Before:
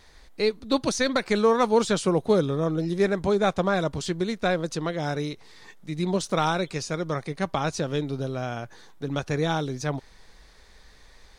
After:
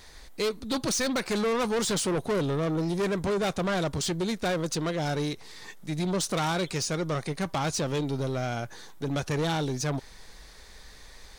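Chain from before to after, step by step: treble shelf 6 kHz +8 dB; saturation -27 dBFS, distortion -6 dB; trim +3 dB

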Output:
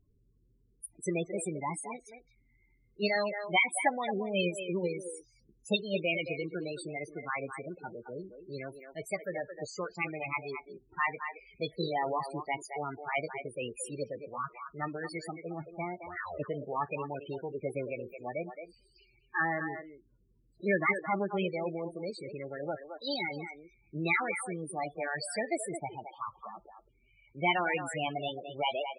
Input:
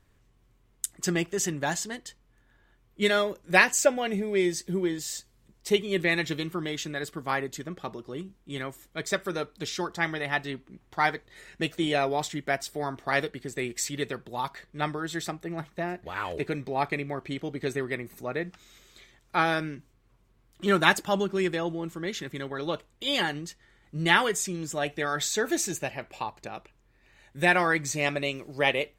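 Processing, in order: formant shift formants +4 st; speakerphone echo 220 ms, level -8 dB; loudest bins only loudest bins 16; trim -4.5 dB

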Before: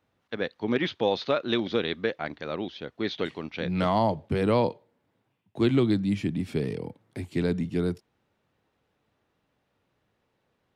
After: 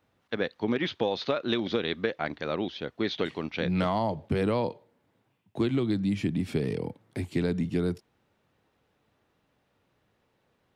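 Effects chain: compression 10:1, threshold -25 dBFS, peak gain reduction 8.5 dB; trim +2.5 dB

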